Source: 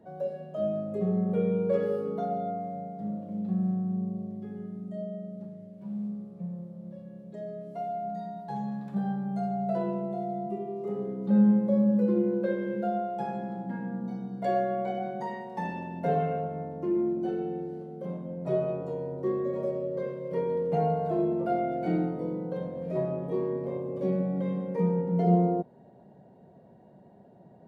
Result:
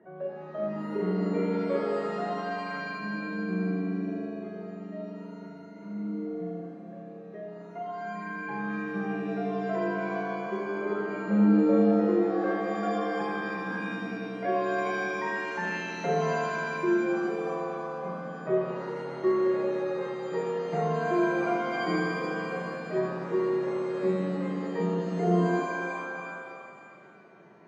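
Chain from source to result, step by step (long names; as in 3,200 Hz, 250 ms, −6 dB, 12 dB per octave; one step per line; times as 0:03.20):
loudspeaker in its box 230–2,600 Hz, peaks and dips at 260 Hz −7 dB, 370 Hz +5 dB, 520 Hz −7 dB, 790 Hz −7 dB, 1,200 Hz +5 dB, 1,900 Hz +8 dB
reverb with rising layers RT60 2.1 s, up +7 semitones, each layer −2 dB, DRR 5.5 dB
level +1.5 dB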